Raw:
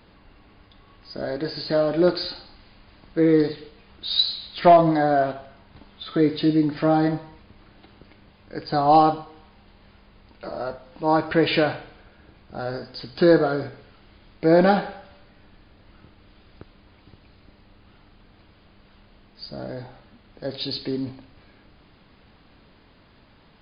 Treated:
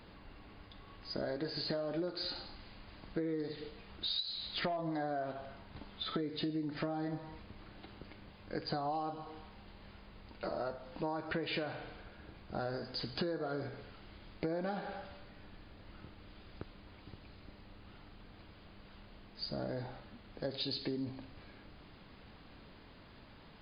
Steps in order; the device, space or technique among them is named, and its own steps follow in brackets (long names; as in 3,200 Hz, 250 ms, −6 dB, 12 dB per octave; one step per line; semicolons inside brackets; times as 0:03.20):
serial compression, leveller first (downward compressor 3 to 1, threshold −21 dBFS, peak gain reduction 9.5 dB; downward compressor 6 to 1, threshold −33 dBFS, peak gain reduction 14.5 dB)
level −2 dB